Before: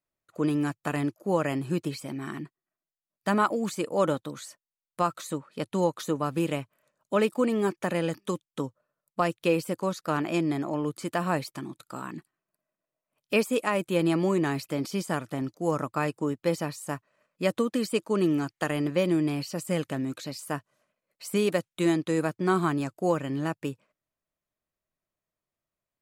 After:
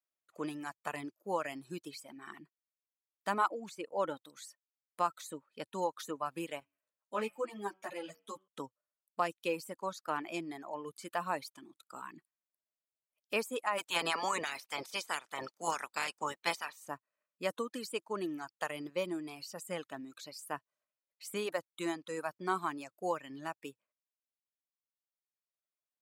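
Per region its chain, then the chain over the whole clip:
0:03.48–0:04.17: high-shelf EQ 5,200 Hz −10 dB + notch filter 1,200 Hz, Q 14
0:06.60–0:08.48: hum removal 94.86 Hz, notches 36 + string-ensemble chorus
0:13.77–0:16.87: ceiling on every frequency bin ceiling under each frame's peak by 24 dB + parametric band 13,000 Hz −9 dB 0.55 octaves
whole clip: high-pass filter 550 Hz 6 dB per octave; reverb reduction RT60 1.9 s; dynamic equaliser 910 Hz, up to +5 dB, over −45 dBFS, Q 2.2; level −6.5 dB

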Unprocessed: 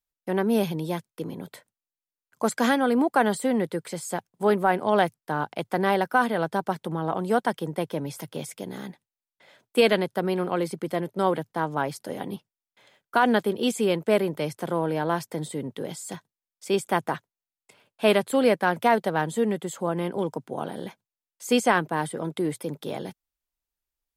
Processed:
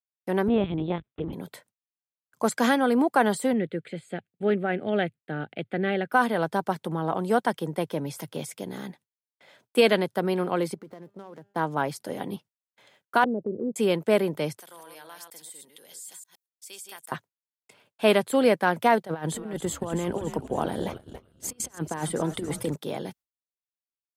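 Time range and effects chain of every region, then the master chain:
0:00.48–0:01.33: low-shelf EQ 340 Hz +5.5 dB + linear-prediction vocoder at 8 kHz pitch kept
0:03.53–0:06.12: low-pass filter 4,000 Hz + phaser with its sweep stopped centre 2,400 Hz, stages 4
0:10.74–0:11.56: running median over 15 samples + downward compressor 16 to 1, threshold −32 dBFS + tuned comb filter 200 Hz, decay 1.3 s, mix 50%
0:13.24–0:13.76: Butterworth low-pass 580 Hz + downward compressor 2 to 1, threshold −28 dBFS
0:14.60–0:17.12: delay that plays each chunk backwards 117 ms, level −5 dB + first difference + downward compressor 2 to 1, threshold −41 dBFS
0:19.03–0:22.76: compressor whose output falls as the input rises −29 dBFS, ratio −0.5 + echo with shifted repeats 281 ms, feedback 52%, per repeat −140 Hz, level −9 dB + noise gate −38 dBFS, range −15 dB
whole clip: noise gate with hold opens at −50 dBFS; high-pass filter 63 Hz

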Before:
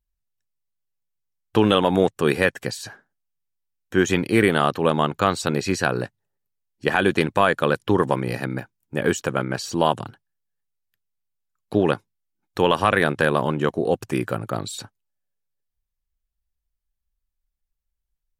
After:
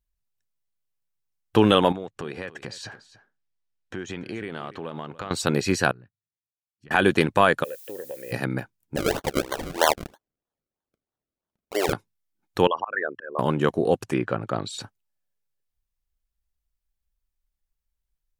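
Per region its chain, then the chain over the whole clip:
0:01.92–0:05.31: low-pass filter 5,500 Hz + downward compressor 4 to 1, threshold −32 dBFS + single-tap delay 288 ms −16.5 dB
0:05.91–0:06.91: guitar amp tone stack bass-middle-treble 6-0-2 + treble cut that deepens with the level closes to 1,700 Hz, closed at −44 dBFS + downward compressor 2.5 to 1, threshold −45 dBFS
0:07.63–0:08.31: formant filter e + downward compressor, threshold −31 dBFS + background noise violet −46 dBFS
0:08.96–0:11.93: high-pass filter 430 Hz 24 dB per octave + sample-and-hold swept by an LFO 34× 3.1 Hz
0:12.67–0:13.39: spectral envelope exaggerated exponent 3 + volume swells 200 ms + resonant band-pass 2,800 Hz, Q 0.54
0:13.95–0:14.81: treble cut that deepens with the level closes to 2,700 Hz, closed at −20.5 dBFS + low-shelf EQ 86 Hz −8 dB
whole clip: no processing

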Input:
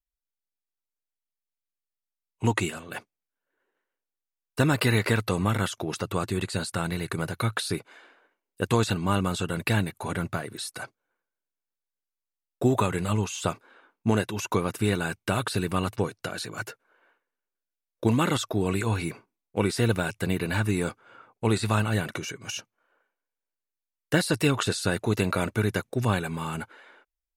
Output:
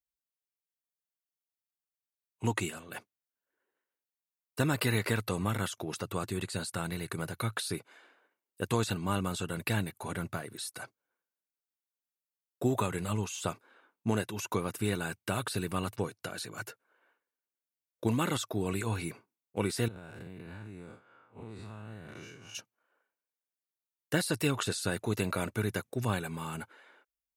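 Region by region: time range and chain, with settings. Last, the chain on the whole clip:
0:19.88–0:22.55: spectrum smeared in time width 120 ms + low-pass filter 2,400 Hz 6 dB per octave + downward compressor 10 to 1, threshold −34 dBFS
whole clip: high-pass filter 57 Hz; high-shelf EQ 10,000 Hz +8 dB; level −6.5 dB

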